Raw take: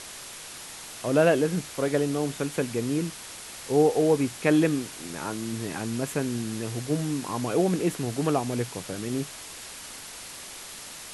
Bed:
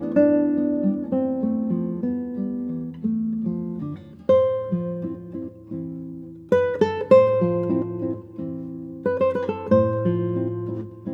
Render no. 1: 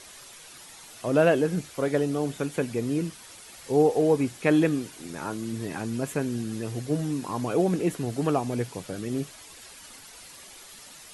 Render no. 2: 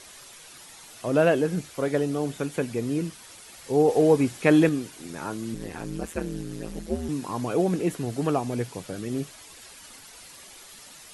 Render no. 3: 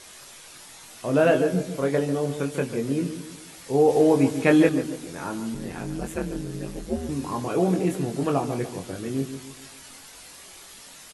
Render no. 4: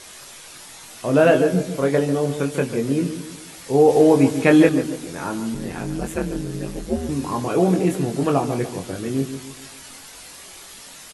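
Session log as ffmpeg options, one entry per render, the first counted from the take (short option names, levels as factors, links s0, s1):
-af "afftdn=nr=9:nf=-42"
-filter_complex "[0:a]asettb=1/sr,asplit=3[s0][s1][s2];[s0]atrim=end=5.544[s3];[s1]atrim=start=5.54:end=7.09,asetpts=PTS-STARTPTS,afade=t=in:d=0.004:c=qsin,afade=t=out:st=1.546:d=0.004:c=qsin,aeval=exprs='val(0)*sin(2*PI*83*n/s)':c=same[s4];[s2]atrim=start=7.086[s5];[s3][s4]acrossfade=d=0.004:c1=hsin:c2=qsin[s6];[s6][s5]acrossfade=d=0.004:c1=qsin:c2=hsin,asplit=3[s7][s8][s9];[s7]atrim=end=3.882[s10];[s8]atrim=start=3.878:end=4.692,asetpts=PTS-STARTPTS,volume=1.41[s11];[s9]atrim=start=4.688[s12];[s10][s11]acrossfade=d=0.004:c1=hsin:c2=hsin[s13];[s13][s12]acrossfade=d=0.004:c1=hsin:c2=hsin"
-filter_complex "[0:a]asplit=2[s0][s1];[s1]adelay=22,volume=0.562[s2];[s0][s2]amix=inputs=2:normalize=0,asplit=2[s3][s4];[s4]adelay=144,lowpass=f=1500:p=1,volume=0.335,asplit=2[s5][s6];[s6]adelay=144,lowpass=f=1500:p=1,volume=0.46,asplit=2[s7][s8];[s8]adelay=144,lowpass=f=1500:p=1,volume=0.46,asplit=2[s9][s10];[s10]adelay=144,lowpass=f=1500:p=1,volume=0.46,asplit=2[s11][s12];[s12]adelay=144,lowpass=f=1500:p=1,volume=0.46[s13];[s3][s5][s7][s9][s11][s13]amix=inputs=6:normalize=0"
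-af "volume=1.68,alimiter=limit=0.708:level=0:latency=1"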